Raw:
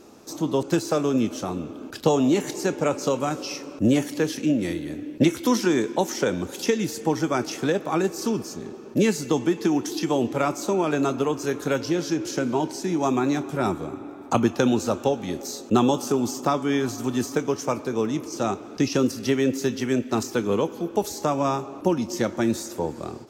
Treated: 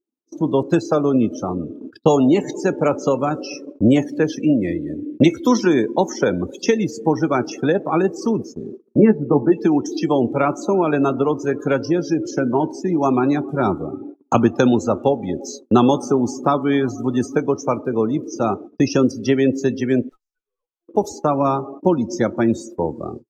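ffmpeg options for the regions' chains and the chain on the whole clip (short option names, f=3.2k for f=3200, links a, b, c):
-filter_complex "[0:a]asettb=1/sr,asplit=3[a][b][c];[a]atrim=end=8.964[d];[b]atrim=start=8.96:end=9.52,asetpts=PTS-STARTPTS,afade=t=in:d=0.004:c=qsin,afade=t=out:st=0.556:d=0.004:c=qsin,lowpass=1.7k,aemphasis=mode=reproduction:type=75fm,asplit=2[e][f];[f]adelay=14,volume=-5.5dB[g];[e][g]amix=inputs=2:normalize=0,atrim=end_sample=24696[h];[c]atrim=start=9.516[i];[d][h]acrossfade=d=0.004:c1=hsin:c2=qsin[j];[j][i]acrossfade=d=0.004:c1=qsin:c2=hsin,asettb=1/sr,asplit=3[k][l][m];[k]atrim=end=20.094[n];[l]atrim=start=20.09:end=20.88,asetpts=PTS-STARTPTS,afade=t=in:d=0.004:c=qsin,afade=t=out:st=0.786:d=0.004:c=qsin,highpass=1.2k,aeval=exprs='(tanh(200*val(0)+0.55)-tanh(0.55))/200':c=same[o];[m]atrim=start=20.876[p];[n][o]acrossfade=d=0.004:c1=hsin:c2=qsin[q];[q][p]acrossfade=d=0.004:c1=qsin:c2=hsin,afftdn=nr=26:nf=-33,agate=range=-29dB:threshold=-38dB:ratio=16:detection=peak,adynamicequalizer=threshold=0.00355:dfrequency=5900:dqfactor=0.71:tfrequency=5900:tqfactor=0.71:attack=5:release=100:ratio=0.375:range=2:mode=cutabove:tftype=bell,volume=5.5dB"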